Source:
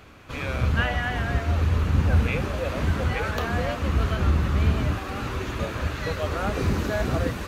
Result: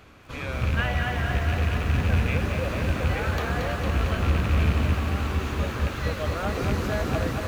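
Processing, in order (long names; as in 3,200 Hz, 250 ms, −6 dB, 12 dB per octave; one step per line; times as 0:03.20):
loose part that buzzes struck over −19 dBFS, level −21 dBFS
feedback echo at a low word length 227 ms, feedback 80%, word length 8 bits, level −6 dB
level −2.5 dB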